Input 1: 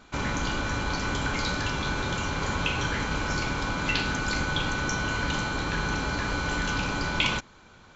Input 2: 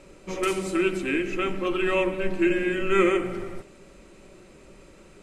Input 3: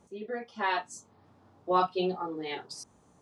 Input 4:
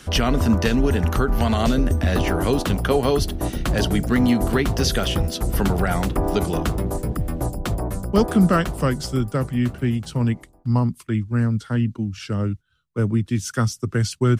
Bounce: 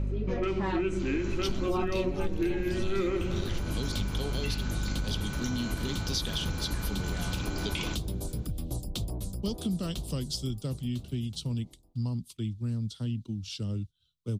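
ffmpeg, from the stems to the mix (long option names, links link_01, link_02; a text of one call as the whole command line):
ffmpeg -i stem1.wav -i stem2.wav -i stem3.wav -i stem4.wav -filter_complex "[0:a]highshelf=frequency=3100:gain=11.5,adelay=550,volume=-11.5dB[link_01];[1:a]lowpass=frequency=5000:width=0.5412,lowpass=frequency=5000:width=1.3066,aeval=exprs='val(0)+0.0158*(sin(2*PI*50*n/s)+sin(2*PI*2*50*n/s)/2+sin(2*PI*3*50*n/s)/3+sin(2*PI*4*50*n/s)/4+sin(2*PI*5*50*n/s)/5)':channel_layout=same,volume=-0.5dB[link_02];[2:a]volume=1dB,asplit=2[link_03][link_04];[3:a]highshelf=frequency=2500:width_type=q:width=3:gain=13,adelay=1300,volume=-18.5dB[link_05];[link_04]apad=whole_len=375097[link_06];[link_01][link_06]sidechaincompress=threshold=-37dB:ratio=8:attack=16:release=390[link_07];[link_07][link_02][link_03][link_05]amix=inputs=4:normalize=0,lowshelf=frequency=420:gain=11.5,acompressor=threshold=-28dB:ratio=4" out.wav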